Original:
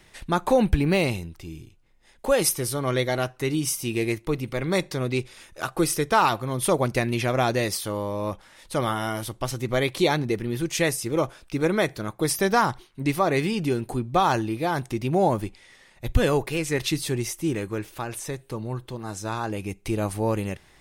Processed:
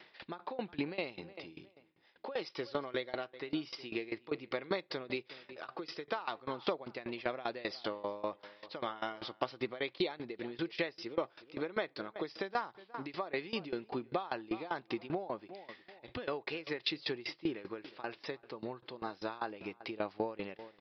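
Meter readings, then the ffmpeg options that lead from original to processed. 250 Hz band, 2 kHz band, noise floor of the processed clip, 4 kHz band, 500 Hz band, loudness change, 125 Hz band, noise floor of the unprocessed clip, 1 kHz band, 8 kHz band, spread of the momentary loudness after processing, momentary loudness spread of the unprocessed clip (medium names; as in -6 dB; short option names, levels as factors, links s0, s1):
-14.5 dB, -12.0 dB, -67 dBFS, -10.5 dB, -13.5 dB, -14.5 dB, -24.5 dB, -56 dBFS, -15.0 dB, under -35 dB, 8 LU, 11 LU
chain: -filter_complex "[0:a]aresample=11025,aresample=44100,highpass=330,asplit=2[s0][s1];[s1]adelay=362,lowpass=f=2700:p=1,volume=0.075,asplit=2[s2][s3];[s3]adelay=362,lowpass=f=2700:p=1,volume=0.28[s4];[s0][s2][s4]amix=inputs=3:normalize=0,acompressor=threshold=0.0282:ratio=6,aeval=exprs='val(0)*pow(10,-20*if(lt(mod(5.1*n/s,1),2*abs(5.1)/1000),1-mod(5.1*n/s,1)/(2*abs(5.1)/1000),(mod(5.1*n/s,1)-2*abs(5.1)/1000)/(1-2*abs(5.1)/1000))/20)':c=same,volume=1.41"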